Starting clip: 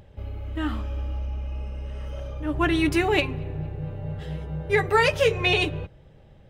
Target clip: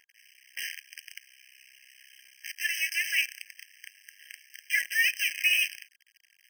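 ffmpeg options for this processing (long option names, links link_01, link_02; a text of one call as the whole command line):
ffmpeg -i in.wav -af "acrusher=bits=5:dc=4:mix=0:aa=0.000001,afftfilt=real='re*eq(mod(floor(b*sr/1024/1600),2),1)':imag='im*eq(mod(floor(b*sr/1024/1600),2),1)':win_size=1024:overlap=0.75" out.wav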